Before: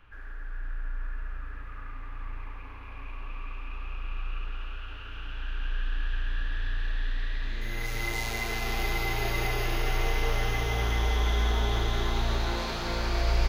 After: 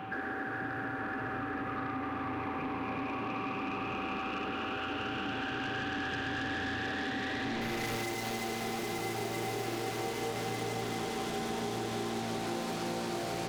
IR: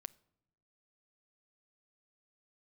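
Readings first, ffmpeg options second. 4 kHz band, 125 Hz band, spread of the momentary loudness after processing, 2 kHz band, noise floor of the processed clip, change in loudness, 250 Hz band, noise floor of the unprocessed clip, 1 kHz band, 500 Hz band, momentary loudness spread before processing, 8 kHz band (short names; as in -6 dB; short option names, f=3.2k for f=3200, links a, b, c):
-4.0 dB, -9.5 dB, 2 LU, -1.5 dB, -37 dBFS, -3.5 dB, +5.5 dB, -40 dBFS, +1.5 dB, +0.5 dB, 15 LU, -1.0 dB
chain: -filter_complex "[0:a]highpass=f=130:w=0.5412,highpass=f=130:w=1.3066,equalizer=f=240:w=0.36:g=15,asplit=2[a][b];[b]aeval=exprs='0.126*sin(PI/2*6.31*val(0)/0.126)':c=same,volume=-11dB[c];[a][c]amix=inputs=2:normalize=0,acompressor=threshold=-34dB:ratio=6,aeval=exprs='val(0)+0.00794*sin(2*PI*770*n/s)':c=same"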